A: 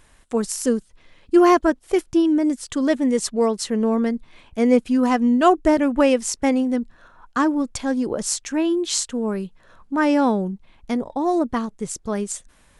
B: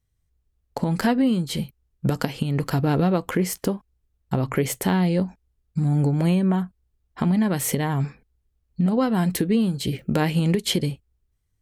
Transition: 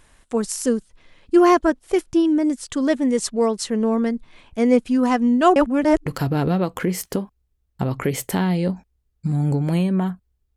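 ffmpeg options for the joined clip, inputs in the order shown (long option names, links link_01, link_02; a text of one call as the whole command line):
ffmpeg -i cue0.wav -i cue1.wav -filter_complex "[0:a]apad=whole_dur=10.56,atrim=end=10.56,asplit=2[link_01][link_02];[link_01]atrim=end=5.562[link_03];[link_02]atrim=start=5.558:end=6.062,asetpts=PTS-STARTPTS,areverse[link_04];[1:a]atrim=start=2.578:end=7.08[link_05];[link_03][link_04]acrossfade=duration=0.004:curve1=hsin:curve2=hsin[link_06];[link_06][link_05]acrossfade=duration=0.004:curve1=hsin:curve2=hsin" out.wav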